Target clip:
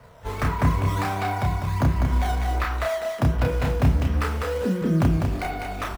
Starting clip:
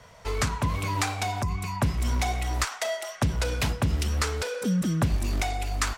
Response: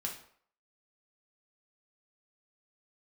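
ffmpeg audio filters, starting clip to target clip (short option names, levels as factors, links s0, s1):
-filter_complex "[0:a]lowpass=2000,asplit=2[s0][s1];[s1]acrusher=samples=11:mix=1:aa=0.000001:lfo=1:lforange=17.6:lforate=1.4,volume=0.708[s2];[s0][s2]amix=inputs=2:normalize=0,asplit=2[s3][s4];[s4]asetrate=88200,aresample=44100,atempo=0.5,volume=0.178[s5];[s3][s5]amix=inputs=2:normalize=0,asplit=2[s6][s7];[s7]adelay=31,volume=0.708[s8];[s6][s8]amix=inputs=2:normalize=0,aecho=1:1:200:0.562,asplit=2[s9][s10];[1:a]atrim=start_sample=2205[s11];[s10][s11]afir=irnorm=-1:irlink=0,volume=0.422[s12];[s9][s12]amix=inputs=2:normalize=0,volume=0.531"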